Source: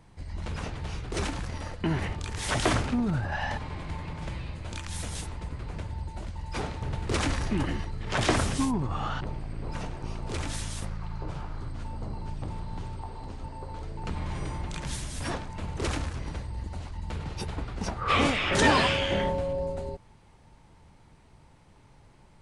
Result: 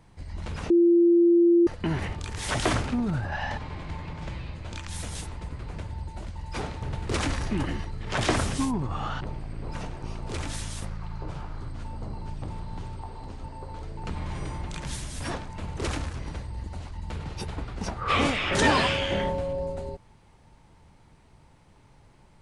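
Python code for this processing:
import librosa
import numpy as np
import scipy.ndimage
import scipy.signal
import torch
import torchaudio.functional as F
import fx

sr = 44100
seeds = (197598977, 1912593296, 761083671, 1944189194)

y = fx.lowpass(x, sr, hz=7600.0, slope=12, at=(3.29, 4.88))
y = fx.edit(y, sr, fx.bleep(start_s=0.7, length_s=0.97, hz=343.0, db=-15.0), tone=tone)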